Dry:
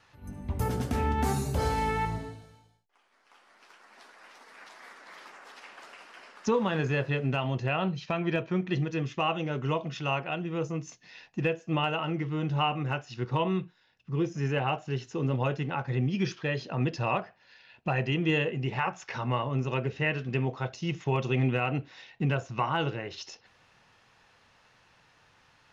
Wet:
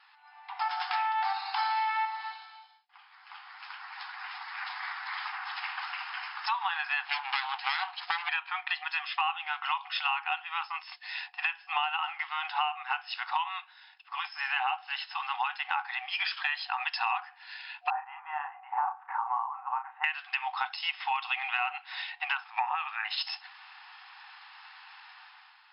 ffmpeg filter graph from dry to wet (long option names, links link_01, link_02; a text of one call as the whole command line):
ffmpeg -i in.wav -filter_complex "[0:a]asettb=1/sr,asplit=3[link_01][link_02][link_03];[link_01]atrim=end=7.054[link_04];[link_02]atrim=start=7.05:end=8.29,asetpts=PTS-STARTPTS,afade=type=in:duration=0.004:curve=qsin,afade=type=out:start_time=1.236:duration=0.004:curve=qsin,highpass=140,aeval=exprs='abs(val(0))':channel_layout=same[link_05];[link_03]atrim=start=8.286[link_06];[link_04][link_05]acrossfade=duration=0.004:curve1=hsin:curve2=qsin[link_07];[link_07][link_06]acrossfade=duration=0.004:curve1=qsin:curve2=hsin,asettb=1/sr,asplit=3[link_08][link_09][link_10];[link_08]atrim=end=17.904[link_11];[link_09]atrim=start=17.9:end=20.04,asetpts=PTS-STARTPTS,afade=type=in:duration=0.004:curve=qsin,afade=type=out:start_time=2.136:duration=0.004:curve=qsin,lowpass=frequency=1100:width=0.5412,lowpass=frequency=1100:width=1.3066,asplit=2[link_12][link_13];[link_13]adelay=34,volume=-6.5dB[link_14];[link_12][link_14]amix=inputs=2:normalize=0,atrim=end_sample=94374[link_15];[link_10]atrim=start=20.036[link_16];[link_11][link_15]acrossfade=duration=0.004:curve1=hsin:curve2=qsin[link_17];[link_17][link_16]acrossfade=duration=0.004:curve1=qsin:curve2=hsin,asettb=1/sr,asplit=3[link_18][link_19][link_20];[link_18]atrim=end=22.444[link_21];[link_19]atrim=start=22.44:end=23.05,asetpts=PTS-STARTPTS,afade=type=in:duration=0.004:curve=qsin,afade=type=out:start_time=0.606:duration=0.004:curve=qsin,lowpass=2700,afreqshift=-210[link_22];[link_20]atrim=start=23.046[link_23];[link_21][link_22]acrossfade=duration=0.004:curve1=hsin:curve2=qsin[link_24];[link_24][link_23]acrossfade=duration=0.004:curve1=qsin:curve2=hsin,dynaudnorm=framelen=120:gausssize=9:maxgain=10dB,afftfilt=real='re*between(b*sr/4096,730,5300)':imag='im*between(b*sr/4096,730,5300)':win_size=4096:overlap=0.75,acompressor=threshold=-30dB:ratio=6,volume=2.5dB" out.wav